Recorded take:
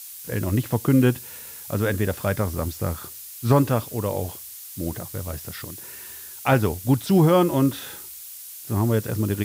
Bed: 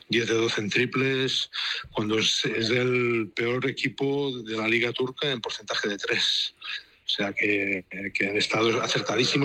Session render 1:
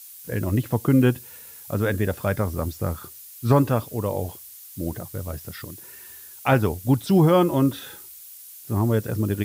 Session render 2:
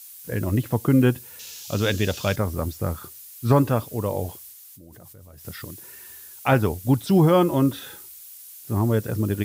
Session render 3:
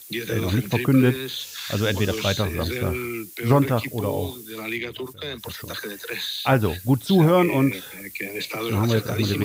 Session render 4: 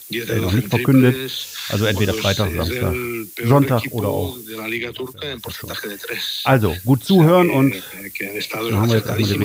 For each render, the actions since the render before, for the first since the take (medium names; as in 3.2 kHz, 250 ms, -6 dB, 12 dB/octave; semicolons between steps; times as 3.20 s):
noise reduction 6 dB, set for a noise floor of -40 dBFS
1.39–2.36 s: high-order bell 4.2 kHz +14 dB; 4.52–5.45 s: level held to a coarse grid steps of 23 dB
add bed -5.5 dB
trim +4.5 dB; peak limiter -3 dBFS, peak gain reduction 1 dB